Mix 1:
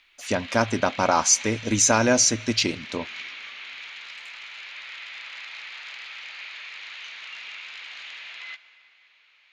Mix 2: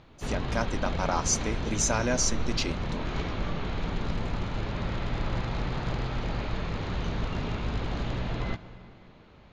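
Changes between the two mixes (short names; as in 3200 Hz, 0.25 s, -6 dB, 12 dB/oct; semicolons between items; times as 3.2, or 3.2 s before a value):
speech -8.5 dB; background: remove resonant high-pass 2300 Hz, resonance Q 2.5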